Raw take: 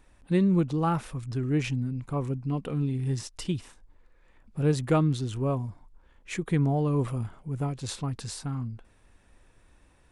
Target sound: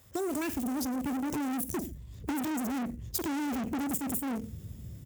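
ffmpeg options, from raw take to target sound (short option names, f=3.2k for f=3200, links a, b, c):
-filter_complex "[0:a]asplit=2[a][b];[b]acrusher=bits=5:mix=0:aa=0.000001,volume=-3dB[c];[a][c]amix=inputs=2:normalize=0,alimiter=limit=-17dB:level=0:latency=1,asubboost=boost=12:cutoff=130,dynaudnorm=f=990:g=5:m=11.5dB,asplit=2[d][e];[e]aecho=0:1:93|186|279:0.15|0.0584|0.0228[f];[d][f]amix=inputs=2:normalize=0,asoftclip=type=tanh:threshold=-23.5dB,aexciter=amount=4.1:drive=5.6:freq=3.1k,asetrate=88200,aresample=44100,highpass=f=69:w=0.5412,highpass=f=69:w=1.3066,acompressor=threshold=-28dB:ratio=6,volume=-1.5dB"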